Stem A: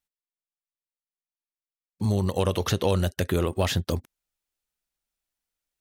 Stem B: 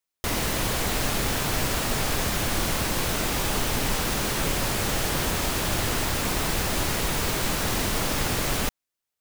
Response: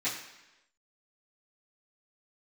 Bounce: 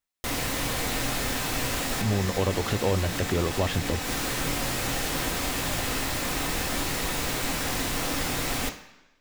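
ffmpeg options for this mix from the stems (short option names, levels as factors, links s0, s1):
-filter_complex "[0:a]lowpass=3100,bandreject=f=60:t=h:w=6,bandreject=f=120:t=h:w=6,bandreject=f=180:t=h:w=6,volume=0.841,asplit=2[s0][s1];[1:a]volume=0.562,asplit=2[s2][s3];[s3]volume=0.398[s4];[s1]apad=whole_len=405846[s5];[s2][s5]sidechaincompress=threshold=0.0178:ratio=8:attack=6.5:release=155[s6];[2:a]atrim=start_sample=2205[s7];[s4][s7]afir=irnorm=-1:irlink=0[s8];[s0][s6][s8]amix=inputs=3:normalize=0"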